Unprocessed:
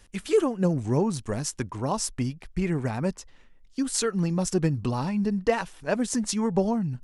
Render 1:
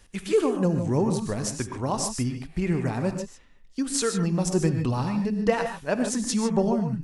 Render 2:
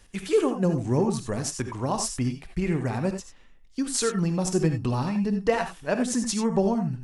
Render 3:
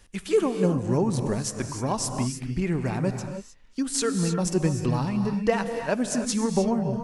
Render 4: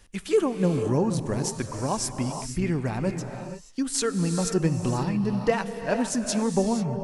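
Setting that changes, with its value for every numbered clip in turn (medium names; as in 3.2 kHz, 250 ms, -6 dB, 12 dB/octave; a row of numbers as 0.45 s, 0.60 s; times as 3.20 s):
gated-style reverb, gate: 170 ms, 110 ms, 330 ms, 510 ms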